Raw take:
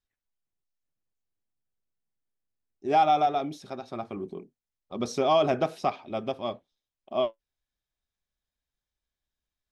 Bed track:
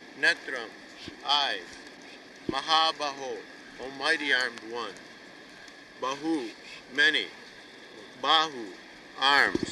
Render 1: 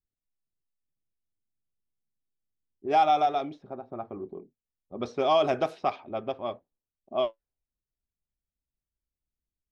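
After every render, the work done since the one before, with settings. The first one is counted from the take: level-controlled noise filter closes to 360 Hz, open at -21.5 dBFS; dynamic bell 180 Hz, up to -7 dB, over -46 dBFS, Q 1.2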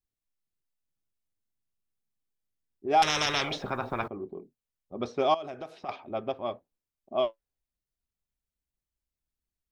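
3.02–4.08 s: spectrum-flattening compressor 10:1; 5.34–5.89 s: compression 2.5:1, threshold -42 dBFS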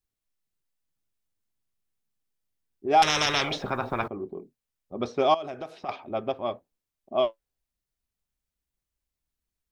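trim +3 dB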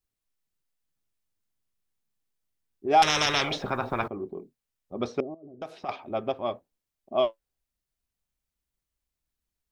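5.20–5.62 s: four-pole ladder low-pass 410 Hz, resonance 35%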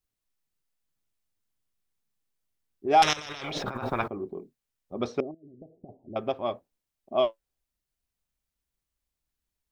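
3.13–3.90 s: compressor with a negative ratio -36 dBFS; 5.31–6.16 s: Gaussian low-pass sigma 21 samples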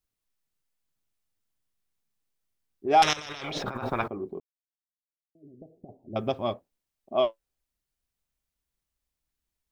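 4.40–5.35 s: mute; 6.13–6.54 s: tone controls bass +9 dB, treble +10 dB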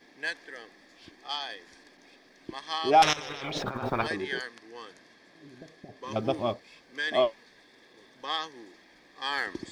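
add bed track -9.5 dB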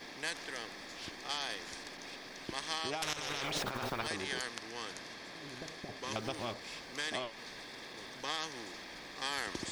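compression 10:1, threshold -29 dBFS, peak gain reduction 14.5 dB; spectrum-flattening compressor 2:1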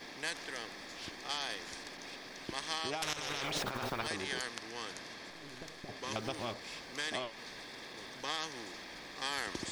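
5.30–5.88 s: partial rectifier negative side -7 dB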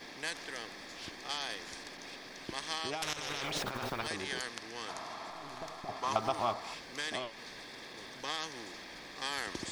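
4.88–6.74 s: time-frequency box 620–1400 Hz +11 dB

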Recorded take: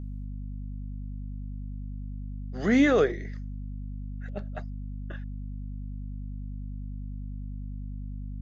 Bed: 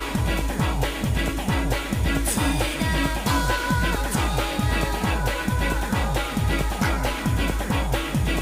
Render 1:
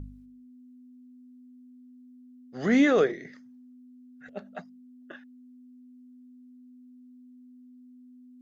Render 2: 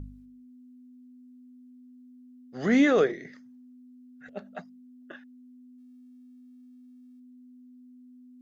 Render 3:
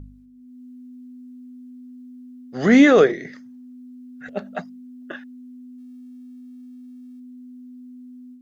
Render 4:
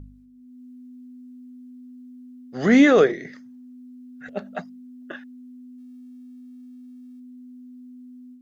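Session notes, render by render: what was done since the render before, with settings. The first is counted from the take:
de-hum 50 Hz, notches 4
5.78–7.20 s: dead-time distortion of 0.07 ms
level rider gain up to 10.5 dB
trim -2 dB

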